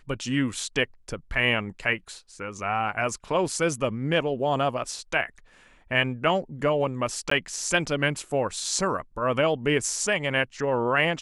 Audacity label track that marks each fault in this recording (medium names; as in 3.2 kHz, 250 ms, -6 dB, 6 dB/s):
7.300000	7.310000	dropout 14 ms